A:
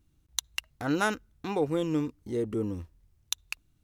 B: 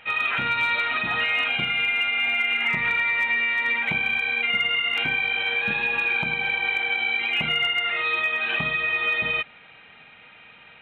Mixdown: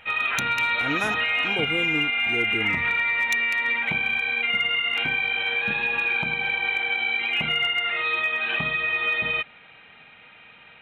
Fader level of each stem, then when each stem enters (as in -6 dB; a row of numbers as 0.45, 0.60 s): -2.0, -0.5 dB; 0.00, 0.00 s